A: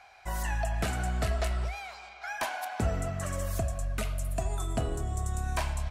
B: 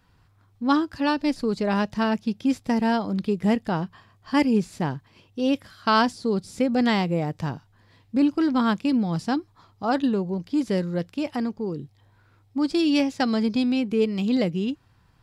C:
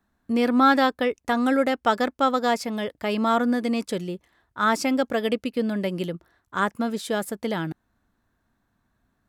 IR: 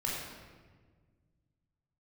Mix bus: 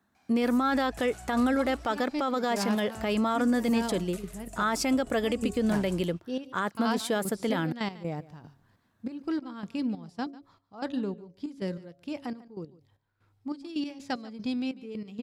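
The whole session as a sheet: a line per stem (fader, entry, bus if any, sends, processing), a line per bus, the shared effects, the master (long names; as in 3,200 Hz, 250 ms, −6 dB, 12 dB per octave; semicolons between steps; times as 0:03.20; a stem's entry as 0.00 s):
−14.0 dB, 0.15 s, no send, echo send −8.5 dB, bass and treble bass −3 dB, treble +9 dB
−8.0 dB, 0.90 s, no send, echo send −19.5 dB, gate pattern "xx...xxxx...x.." 189 BPM −12 dB; hum removal 138.9 Hz, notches 5
+0.5 dB, 0.00 s, no send, no echo send, high-pass filter 100 Hz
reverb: not used
echo: single-tap delay 146 ms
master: brickwall limiter −18 dBFS, peak gain reduction 11.5 dB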